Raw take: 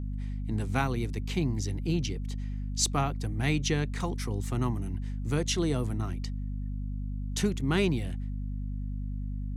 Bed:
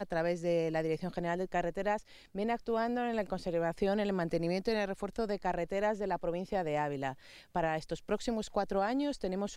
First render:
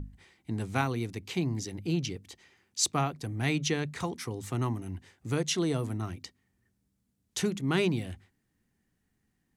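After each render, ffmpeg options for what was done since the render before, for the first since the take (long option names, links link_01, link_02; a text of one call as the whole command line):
ffmpeg -i in.wav -af "bandreject=frequency=50:width_type=h:width=6,bandreject=frequency=100:width_type=h:width=6,bandreject=frequency=150:width_type=h:width=6,bandreject=frequency=200:width_type=h:width=6,bandreject=frequency=250:width_type=h:width=6" out.wav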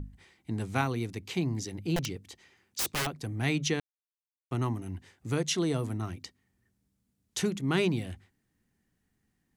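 ffmpeg -i in.wav -filter_complex "[0:a]asettb=1/sr,asplit=3[link_01][link_02][link_03];[link_01]atrim=end=1.964[link_04];[link_02]atrim=start=1.96:end=3.07,asetpts=PTS-STARTPTS,afade=type=in:duration=0.004:curve=qsin,afade=type=out:start_time=1.106:duration=0.004:curve=qsin,aeval=exprs='(mod(15.8*val(0)+1,2)-1)/15.8':channel_layout=same[link_05];[link_03]atrim=start=3.066[link_06];[link_04][link_05]acrossfade=duration=0.004:curve1=hsin:curve2=qsin[link_07];[link_07][link_06]acrossfade=duration=0.004:curve1=qsin:curve2=hsin,asplit=3[link_08][link_09][link_10];[link_08]atrim=end=3.8,asetpts=PTS-STARTPTS,afade=type=out:start_time=3.796:duration=0.004:curve=hsin[link_11];[link_09]atrim=start=3.8:end=4.51,asetpts=PTS-STARTPTS,volume=0[link_12];[link_10]atrim=start=4.51,asetpts=PTS-STARTPTS,afade=type=in:duration=0.004:curve=hsin[link_13];[link_11][link_12][link_13]concat=n=3:v=0:a=1" out.wav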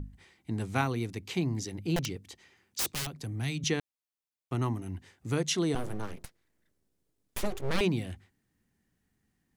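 ffmpeg -i in.wav -filter_complex "[0:a]asettb=1/sr,asplit=3[link_01][link_02][link_03];[link_01]atrim=end=2.924[link_04];[link_02]atrim=start=2.92:end=3.64,asetpts=PTS-STARTPTS,afade=type=in:duration=0.004:curve=qsin,afade=type=out:start_time=0.716:duration=0.004:curve=qsin,acrossover=split=180|3000[link_05][link_06][link_07];[link_06]acompressor=threshold=-41dB:ratio=4:attack=3.2:release=140:knee=2.83:detection=peak[link_08];[link_05][link_08][link_07]amix=inputs=3:normalize=0[link_09];[link_03]atrim=start=3.636[link_10];[link_04][link_09]acrossfade=duration=0.004:curve1=hsin:curve2=qsin[link_11];[link_11][link_10]acrossfade=duration=0.004:curve1=qsin:curve2=hsin,asettb=1/sr,asplit=3[link_12][link_13][link_14];[link_12]atrim=end=5.754[link_15];[link_13]atrim=start=5.75:end=7.81,asetpts=PTS-STARTPTS,afade=type=in:duration=0.004:curve=qsin,afade=type=out:start_time=2.056:duration=0.004:curve=qsin,aeval=exprs='abs(val(0))':channel_layout=same[link_16];[link_14]atrim=start=7.806[link_17];[link_15][link_16]acrossfade=duration=0.004:curve1=hsin:curve2=qsin[link_18];[link_18][link_17]acrossfade=duration=0.004:curve1=qsin:curve2=hsin" out.wav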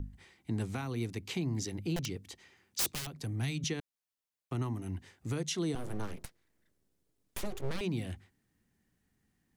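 ffmpeg -i in.wav -filter_complex "[0:a]alimiter=limit=-24dB:level=0:latency=1:release=244,acrossover=split=360|3000[link_01][link_02][link_03];[link_02]acompressor=threshold=-42dB:ratio=2[link_04];[link_01][link_04][link_03]amix=inputs=3:normalize=0" out.wav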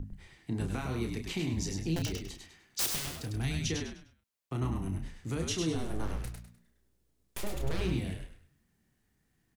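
ffmpeg -i in.wav -filter_complex "[0:a]asplit=2[link_01][link_02];[link_02]adelay=31,volume=-6.5dB[link_03];[link_01][link_03]amix=inputs=2:normalize=0,asplit=2[link_04][link_05];[link_05]asplit=4[link_06][link_07][link_08][link_09];[link_06]adelay=101,afreqshift=-59,volume=-4.5dB[link_10];[link_07]adelay=202,afreqshift=-118,volume=-14.7dB[link_11];[link_08]adelay=303,afreqshift=-177,volume=-24.8dB[link_12];[link_09]adelay=404,afreqshift=-236,volume=-35dB[link_13];[link_10][link_11][link_12][link_13]amix=inputs=4:normalize=0[link_14];[link_04][link_14]amix=inputs=2:normalize=0" out.wav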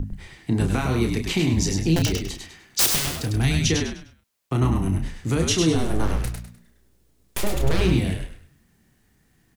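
ffmpeg -i in.wav -af "volume=12dB" out.wav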